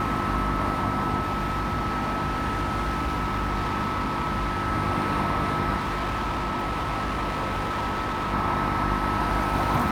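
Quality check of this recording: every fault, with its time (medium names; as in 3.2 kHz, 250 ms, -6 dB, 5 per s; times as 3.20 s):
hum 50 Hz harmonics 7 -31 dBFS
whine 1.3 kHz -29 dBFS
1.22–4.68 s: clipped -22.5 dBFS
5.76–8.34 s: clipped -24.5 dBFS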